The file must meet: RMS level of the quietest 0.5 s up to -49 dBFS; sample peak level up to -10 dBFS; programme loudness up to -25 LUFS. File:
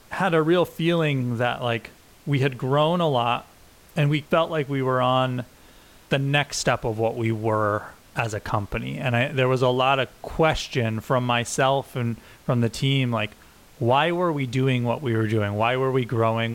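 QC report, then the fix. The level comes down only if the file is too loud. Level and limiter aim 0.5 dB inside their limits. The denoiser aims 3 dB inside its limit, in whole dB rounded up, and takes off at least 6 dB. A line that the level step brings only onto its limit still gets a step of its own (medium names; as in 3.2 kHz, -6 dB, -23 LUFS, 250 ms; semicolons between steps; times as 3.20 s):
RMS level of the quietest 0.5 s -51 dBFS: pass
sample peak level -8.0 dBFS: fail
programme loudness -23.5 LUFS: fail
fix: trim -2 dB; peak limiter -10.5 dBFS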